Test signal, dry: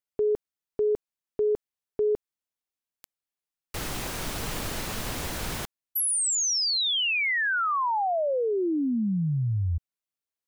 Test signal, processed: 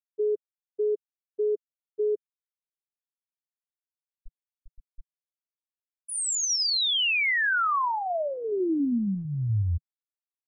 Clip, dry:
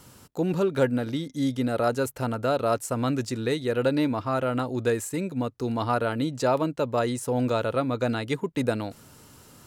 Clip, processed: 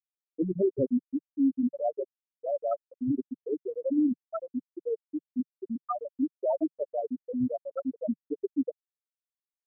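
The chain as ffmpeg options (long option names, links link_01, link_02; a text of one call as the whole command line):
ffmpeg -i in.wav -af "afftfilt=real='re*gte(hypot(re,im),0.447)':imag='im*gte(hypot(re,im),0.447)':win_size=1024:overlap=0.75,equalizer=frequency=160:width_type=o:width=0.33:gain=-11,equalizer=frequency=500:width_type=o:width=0.33:gain=-11,equalizer=frequency=800:width_type=o:width=0.33:gain=-6,volume=3dB" out.wav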